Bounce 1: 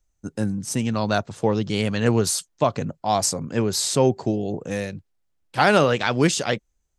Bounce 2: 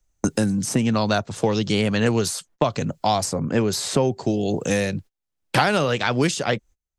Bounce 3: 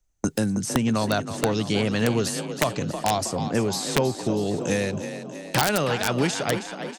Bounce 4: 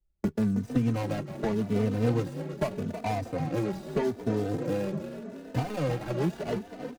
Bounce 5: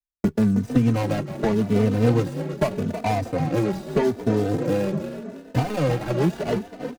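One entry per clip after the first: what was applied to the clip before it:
noise gate −45 dBFS, range −28 dB; multiband upward and downward compressor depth 100%
echo with shifted repeats 320 ms, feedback 59%, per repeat +34 Hz, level −10 dB; wrap-around overflow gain 7.5 dB; level −3 dB
running median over 41 samples; barber-pole flanger 3.2 ms +0.82 Hz
downward expander −37 dBFS; level +7 dB

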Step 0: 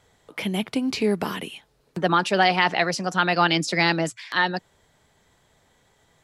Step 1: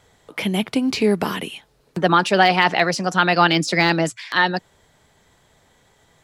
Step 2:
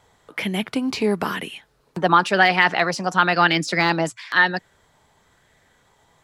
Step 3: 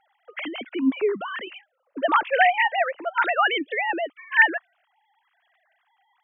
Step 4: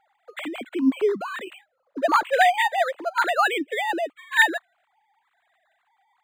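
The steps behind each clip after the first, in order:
de-essing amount 55%; level +4.5 dB
auto-filter bell 0.99 Hz 910–1,900 Hz +7 dB; level −3.5 dB
three sine waves on the formant tracks; level −3 dB
linearly interpolated sample-rate reduction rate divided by 8×; level +1.5 dB

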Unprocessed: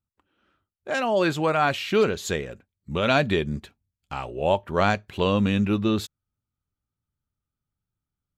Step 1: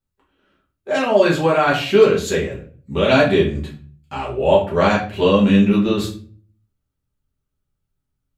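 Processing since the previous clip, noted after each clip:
mains-hum notches 50/100/150/200 Hz
rectangular room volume 36 cubic metres, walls mixed, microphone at 1.2 metres
level −1.5 dB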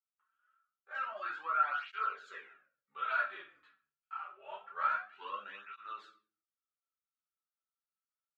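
four-pole ladder band-pass 1,400 Hz, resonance 80%
through-zero flanger with one copy inverted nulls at 0.26 Hz, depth 5.8 ms
level −6.5 dB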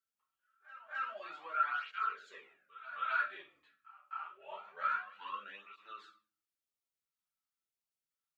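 echo ahead of the sound 263 ms −15 dB
auto-filter notch sine 0.92 Hz 390–1,600 Hz

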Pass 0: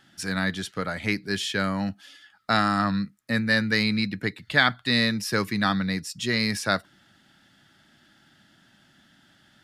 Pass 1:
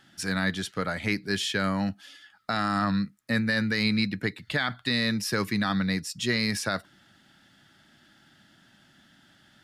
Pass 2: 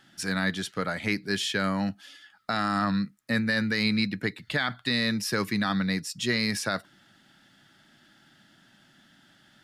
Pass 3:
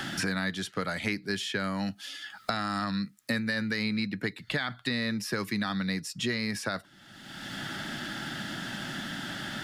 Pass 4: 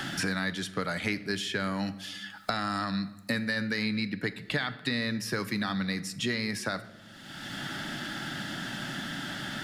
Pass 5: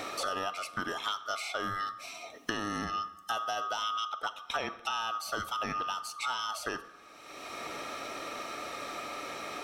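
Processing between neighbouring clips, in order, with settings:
brickwall limiter −14.5 dBFS, peak gain reduction 10.5 dB
parametric band 78 Hz −9 dB 0.53 octaves
multiband upward and downward compressor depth 100%; level −4 dB
rectangular room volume 770 cubic metres, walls mixed, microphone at 0.36 metres
neighbouring bands swapped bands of 1,000 Hz; level −3.5 dB

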